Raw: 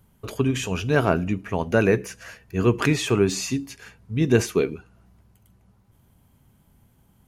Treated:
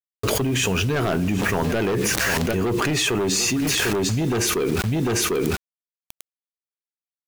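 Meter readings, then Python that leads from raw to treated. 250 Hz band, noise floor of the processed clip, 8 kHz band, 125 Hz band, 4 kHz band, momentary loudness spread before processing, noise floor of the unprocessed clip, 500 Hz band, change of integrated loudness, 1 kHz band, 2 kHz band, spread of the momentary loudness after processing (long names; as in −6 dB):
+1.0 dB, below −85 dBFS, +10.0 dB, +1.0 dB, +9.0 dB, 13 LU, −61 dBFS, 0.0 dB, +1.5 dB, +3.5 dB, +5.0 dB, 3 LU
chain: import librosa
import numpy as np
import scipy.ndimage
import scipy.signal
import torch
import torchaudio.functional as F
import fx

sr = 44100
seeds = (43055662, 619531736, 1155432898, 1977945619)

p1 = fx.highpass(x, sr, hz=57.0, slope=6)
p2 = fx.dynamic_eq(p1, sr, hz=360.0, q=7.6, threshold_db=-38.0, ratio=4.0, max_db=4)
p3 = fx.fold_sine(p2, sr, drive_db=13, ceiling_db=-4.0)
p4 = p2 + (p3 * librosa.db_to_amplitude(-11.0))
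p5 = fx.quant_dither(p4, sr, seeds[0], bits=6, dither='none')
p6 = p5 + fx.echo_single(p5, sr, ms=748, db=-18.5, dry=0)
p7 = fx.env_flatten(p6, sr, amount_pct=100)
y = p7 * librosa.db_to_amplitude(-10.5)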